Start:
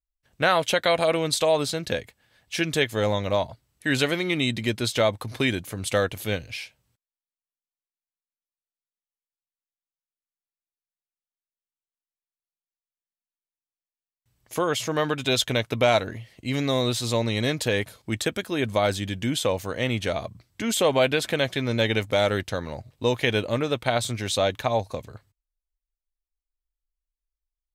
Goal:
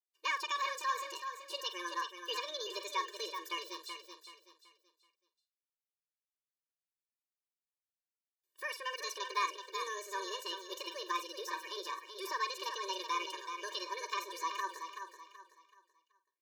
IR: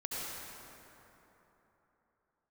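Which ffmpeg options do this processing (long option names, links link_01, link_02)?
-filter_complex "[0:a]equalizer=frequency=290:width=0.59:gain=-10.5,bandreject=frequency=390:width=12,acrossover=split=2500[link_01][link_02];[link_02]acompressor=threshold=-42dB:ratio=6[link_03];[link_01][link_03]amix=inputs=2:normalize=0,asplit=2[link_04][link_05];[link_05]adelay=80,highpass=300,lowpass=3400,asoftclip=type=hard:threshold=-18dB,volume=-10dB[link_06];[link_04][link_06]amix=inputs=2:normalize=0,asetrate=74529,aresample=44100,asplit=2[link_07][link_08];[link_08]aecho=0:1:379|758|1137|1516:0.422|0.139|0.0459|0.0152[link_09];[link_07][link_09]amix=inputs=2:normalize=0,afftfilt=real='re*eq(mod(floor(b*sr/1024/310),2),1)':imag='im*eq(mod(floor(b*sr/1024/310),2),1)':win_size=1024:overlap=0.75,volume=-6.5dB"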